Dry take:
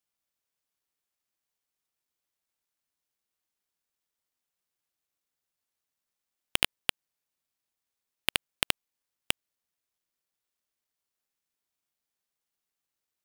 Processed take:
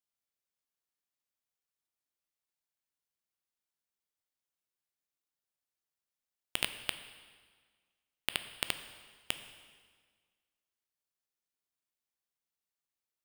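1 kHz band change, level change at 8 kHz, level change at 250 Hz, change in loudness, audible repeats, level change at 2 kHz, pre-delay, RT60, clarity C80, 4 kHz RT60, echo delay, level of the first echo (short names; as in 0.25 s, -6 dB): -6.5 dB, -6.5 dB, -6.5 dB, -6.5 dB, none, -6.5 dB, 7 ms, 1.6 s, 12.0 dB, 1.5 s, none, none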